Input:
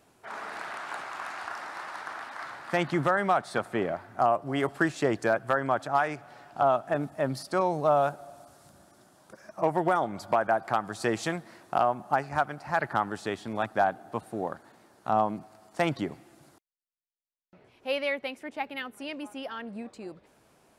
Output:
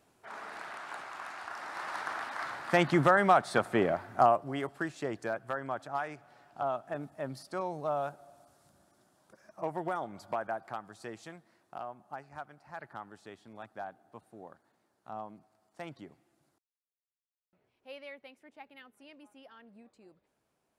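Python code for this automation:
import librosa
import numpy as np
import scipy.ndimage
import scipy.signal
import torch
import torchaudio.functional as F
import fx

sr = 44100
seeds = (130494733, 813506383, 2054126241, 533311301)

y = fx.gain(x, sr, db=fx.line((1.47, -5.5), (1.94, 1.5), (4.21, 1.5), (4.7, -9.5), (10.4, -9.5), (11.23, -17.0)))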